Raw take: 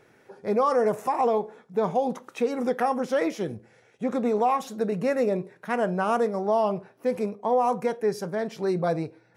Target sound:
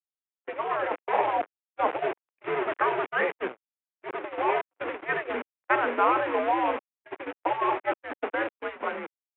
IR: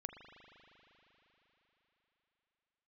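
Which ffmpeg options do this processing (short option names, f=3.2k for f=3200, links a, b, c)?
-af "aresample=8000,aeval=exprs='val(0)*gte(abs(val(0)),0.0266)':c=same,aresample=44100,afftfilt=real='re*lt(hypot(re,im),0.355)':imag='im*lt(hypot(re,im),0.355)':win_size=1024:overlap=0.75,agate=range=-46dB:threshold=-32dB:ratio=16:detection=peak,highpass=f=530:t=q:w=0.5412,highpass=f=530:t=q:w=1.307,lowpass=f=2.7k:t=q:w=0.5176,lowpass=f=2.7k:t=q:w=0.7071,lowpass=f=2.7k:t=q:w=1.932,afreqshift=-120,dynaudnorm=f=140:g=11:m=8dB"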